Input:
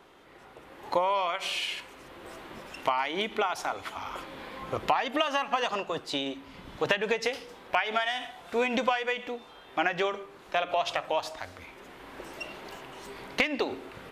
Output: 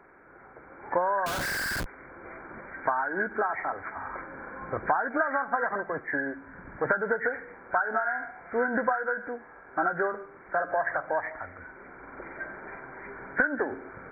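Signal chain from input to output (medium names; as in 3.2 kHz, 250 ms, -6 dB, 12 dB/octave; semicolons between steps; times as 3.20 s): knee-point frequency compression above 1.3 kHz 4:1; 1.26–1.86 s: Schmitt trigger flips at -38.5 dBFS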